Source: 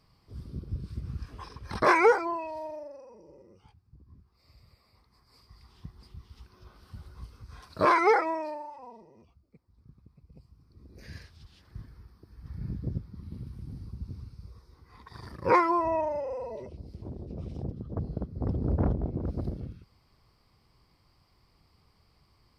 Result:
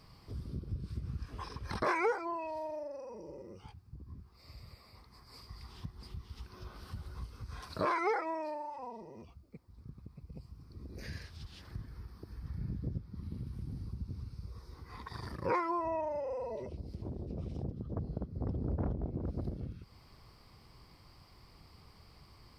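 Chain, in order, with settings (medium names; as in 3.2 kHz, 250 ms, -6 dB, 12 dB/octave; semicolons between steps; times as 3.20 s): compression 2:1, threshold -51 dBFS, peak gain reduction 18.5 dB; trim +7 dB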